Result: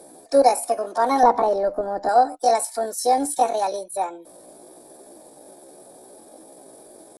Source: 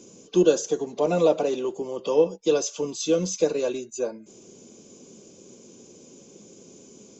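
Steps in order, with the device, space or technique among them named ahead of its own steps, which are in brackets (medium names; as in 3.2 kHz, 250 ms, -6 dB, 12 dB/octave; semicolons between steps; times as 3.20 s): chipmunk voice (pitch shift +7.5 st); 1.23–2.09 s: tilt EQ -4 dB/octave; trim +3 dB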